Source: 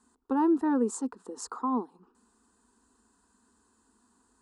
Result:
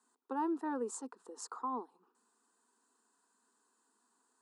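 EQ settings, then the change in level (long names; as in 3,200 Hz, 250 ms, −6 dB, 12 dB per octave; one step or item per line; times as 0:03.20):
high-pass filter 410 Hz 12 dB per octave
−6.0 dB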